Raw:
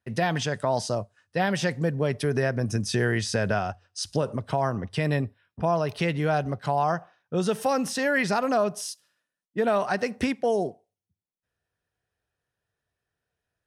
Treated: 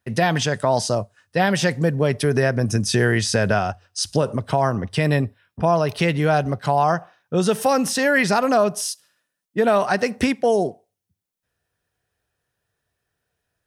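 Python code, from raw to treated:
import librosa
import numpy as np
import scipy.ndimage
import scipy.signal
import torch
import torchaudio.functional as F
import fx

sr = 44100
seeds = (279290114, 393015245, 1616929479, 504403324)

y = fx.high_shelf(x, sr, hz=7700.0, db=5.0)
y = y * 10.0 ** (6.0 / 20.0)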